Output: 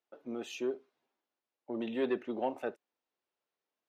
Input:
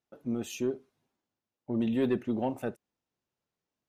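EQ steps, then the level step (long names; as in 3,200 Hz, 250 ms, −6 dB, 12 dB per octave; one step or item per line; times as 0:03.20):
three-way crossover with the lows and the highs turned down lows −22 dB, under 300 Hz, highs −15 dB, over 5,100 Hz
0.0 dB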